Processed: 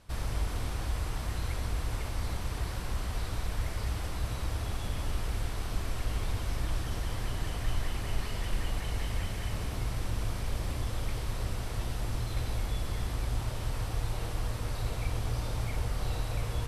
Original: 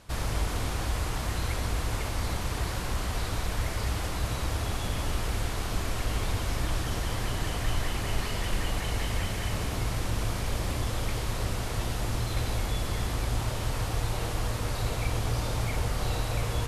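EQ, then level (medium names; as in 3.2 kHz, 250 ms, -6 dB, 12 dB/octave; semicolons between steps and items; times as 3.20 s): bass shelf 97 Hz +6 dB; band-stop 6.8 kHz, Q 16; -6.5 dB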